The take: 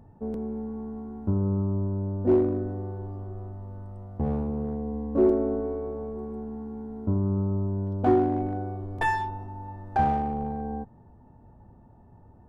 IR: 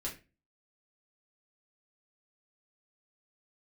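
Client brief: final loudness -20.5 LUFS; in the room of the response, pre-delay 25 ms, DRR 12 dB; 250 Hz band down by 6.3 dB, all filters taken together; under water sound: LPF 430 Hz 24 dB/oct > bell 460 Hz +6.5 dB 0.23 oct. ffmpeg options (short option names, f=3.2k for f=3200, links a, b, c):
-filter_complex "[0:a]equalizer=f=250:t=o:g=-9,asplit=2[a][b];[1:a]atrim=start_sample=2205,adelay=25[c];[b][c]afir=irnorm=-1:irlink=0,volume=-12.5dB[d];[a][d]amix=inputs=2:normalize=0,lowpass=f=430:w=0.5412,lowpass=f=430:w=1.3066,equalizer=f=460:t=o:w=0.23:g=6.5,volume=11dB"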